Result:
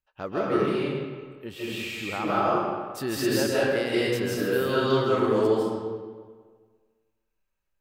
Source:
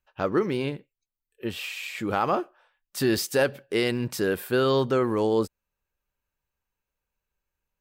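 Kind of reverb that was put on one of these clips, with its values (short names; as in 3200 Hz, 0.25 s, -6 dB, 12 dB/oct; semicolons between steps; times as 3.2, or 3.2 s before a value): digital reverb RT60 1.6 s, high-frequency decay 0.7×, pre-delay 0.115 s, DRR -8 dB; gain -7.5 dB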